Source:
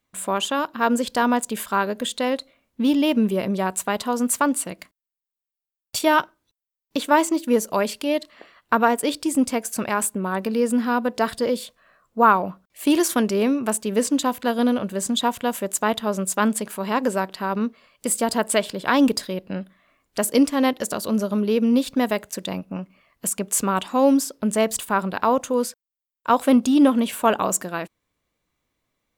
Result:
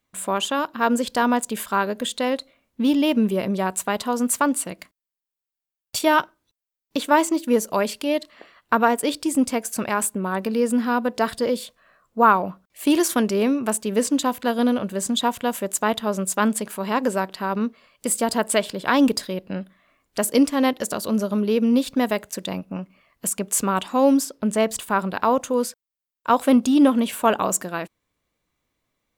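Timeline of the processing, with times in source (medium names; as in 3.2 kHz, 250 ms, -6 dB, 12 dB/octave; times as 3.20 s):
24.25–24.85 s: treble shelf 6.5 kHz -5 dB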